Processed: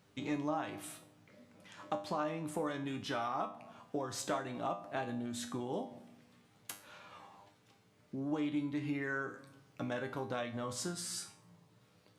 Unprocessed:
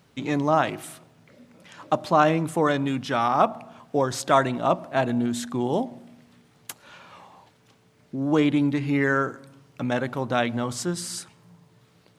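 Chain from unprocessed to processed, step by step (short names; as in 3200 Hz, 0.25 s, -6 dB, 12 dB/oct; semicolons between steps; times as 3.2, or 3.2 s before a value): compressor 6:1, threshold -26 dBFS, peak gain reduction 12.5 dB; resonator 100 Hz, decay 0.39 s, harmonics all, mix 80%; gain +1 dB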